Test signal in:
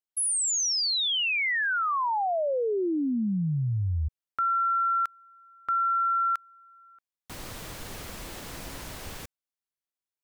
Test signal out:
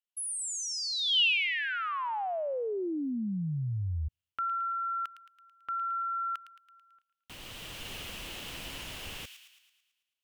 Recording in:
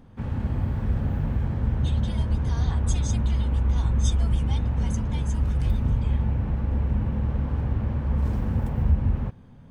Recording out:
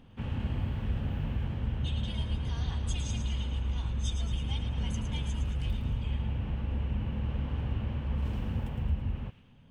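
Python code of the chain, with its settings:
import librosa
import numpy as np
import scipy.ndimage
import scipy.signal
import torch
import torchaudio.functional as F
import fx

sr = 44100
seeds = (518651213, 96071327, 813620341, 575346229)

y = fx.echo_wet_highpass(x, sr, ms=110, feedback_pct=54, hz=2200.0, wet_db=-7.0)
y = fx.rider(y, sr, range_db=3, speed_s=0.5)
y = fx.peak_eq(y, sr, hz=2900.0, db=13.5, octaves=0.6)
y = y * librosa.db_to_amplitude(-8.0)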